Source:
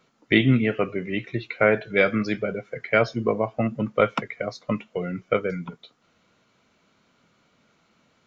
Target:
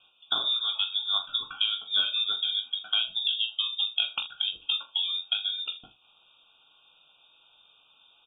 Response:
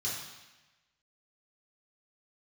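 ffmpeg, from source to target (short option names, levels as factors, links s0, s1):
-filter_complex "[0:a]highpass=48,lowpass=f=3200:t=q:w=0.5098,lowpass=f=3200:t=q:w=0.6013,lowpass=f=3200:t=q:w=0.9,lowpass=f=3200:t=q:w=2.563,afreqshift=-3800,asuperstop=centerf=1900:order=12:qfactor=1.8,acompressor=threshold=0.0355:ratio=6,asplit=2[s0][s1];[s1]adelay=43,volume=0.282[s2];[s0][s2]amix=inputs=2:normalize=0,aecho=1:1:20|79:0.422|0.126,volume=1.5"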